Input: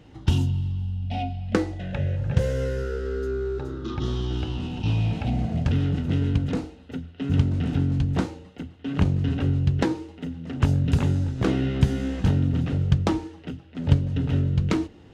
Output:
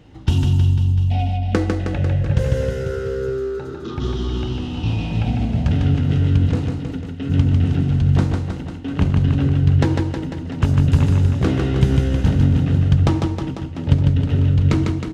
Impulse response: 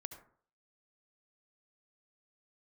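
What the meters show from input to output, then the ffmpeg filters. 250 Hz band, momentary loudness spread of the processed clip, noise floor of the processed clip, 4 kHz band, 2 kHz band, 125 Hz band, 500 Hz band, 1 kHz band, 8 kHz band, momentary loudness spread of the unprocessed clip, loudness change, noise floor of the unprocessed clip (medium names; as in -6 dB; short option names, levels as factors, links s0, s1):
+5.0 dB, 9 LU, -30 dBFS, +4.0 dB, +4.0 dB, +7.0 dB, +4.5 dB, +4.5 dB, no reading, 9 LU, +6.5 dB, -48 dBFS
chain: -filter_complex "[0:a]aecho=1:1:150|315|496.5|696.2|915.8:0.631|0.398|0.251|0.158|0.1,asplit=2[s0][s1];[1:a]atrim=start_sample=2205,lowshelf=f=110:g=7.5[s2];[s1][s2]afir=irnorm=-1:irlink=0,volume=0.708[s3];[s0][s3]amix=inputs=2:normalize=0,volume=0.891"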